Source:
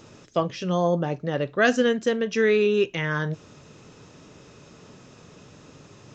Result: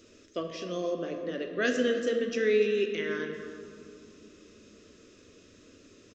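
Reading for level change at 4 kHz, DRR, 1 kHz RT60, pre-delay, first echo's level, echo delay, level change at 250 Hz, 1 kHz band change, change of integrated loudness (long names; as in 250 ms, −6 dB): −5.5 dB, 4.0 dB, 2.7 s, 9 ms, −15.0 dB, 297 ms, −7.0 dB, −13.5 dB, −6.5 dB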